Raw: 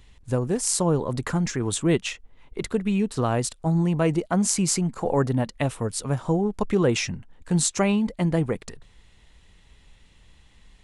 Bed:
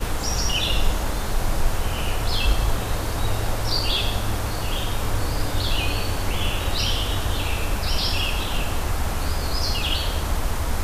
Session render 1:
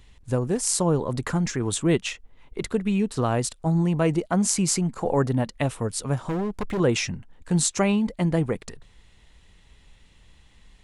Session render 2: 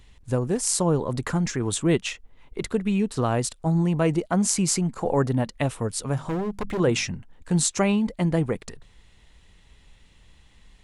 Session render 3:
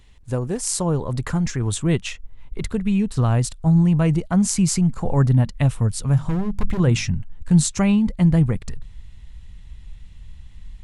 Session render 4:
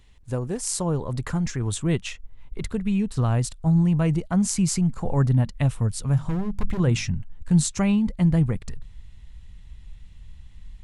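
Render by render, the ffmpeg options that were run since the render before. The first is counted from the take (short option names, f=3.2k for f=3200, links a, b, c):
-filter_complex "[0:a]asettb=1/sr,asplit=3[a][b][c];[a]atrim=end=6.274[d];[b]atrim=start=6.27:end=6.8,asetpts=PTS-STARTPTS,afade=t=in:d=0.004:c=qsin,afade=t=out:st=0.526:d=0.004:c=qsin,asoftclip=type=hard:threshold=-23.5dB[e];[c]atrim=start=6.796[f];[d][e]acrossfade=d=0.004:c1=hsin:c2=qsin[g];[g][f]acrossfade=d=0.004:c1=qsin:c2=hsin"
-filter_complex "[0:a]asettb=1/sr,asplit=3[a][b][c];[a]atrim=end=6.094[d];[b]atrim=start=6.09:end=7.1,asetpts=PTS-STARTPTS,afade=t=in:d=0.004:c=qsin,afade=t=out:st=1.006:d=0.004:c=qsin,bandreject=f=50:t=h:w=6,bandreject=f=100:t=h:w=6,bandreject=f=150:t=h:w=6,bandreject=f=200:t=h:w=6,bandreject=f=250:t=h:w=6[e];[c]atrim=start=7.096[f];[d][e]acrossfade=d=0.004:c1=hsin:c2=qsin[g];[g][f]acrossfade=d=0.004:c1=qsin:c2=hsin"
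-af "asubboost=boost=6.5:cutoff=150"
-af "volume=-3.5dB"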